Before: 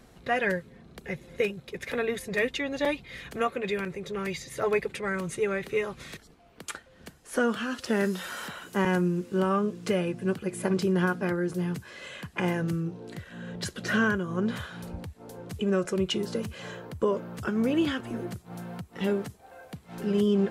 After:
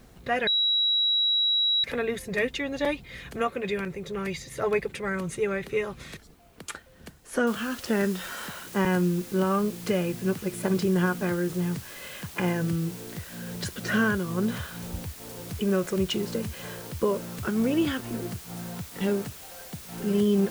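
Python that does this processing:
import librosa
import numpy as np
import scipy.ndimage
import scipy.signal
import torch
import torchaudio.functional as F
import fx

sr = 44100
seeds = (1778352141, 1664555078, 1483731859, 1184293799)

y = fx.noise_floor_step(x, sr, seeds[0], at_s=7.47, before_db=-67, after_db=-45, tilt_db=0.0)
y = fx.edit(y, sr, fx.bleep(start_s=0.47, length_s=1.37, hz=3880.0, db=-20.5), tone=tone)
y = fx.low_shelf(y, sr, hz=120.0, db=6.0)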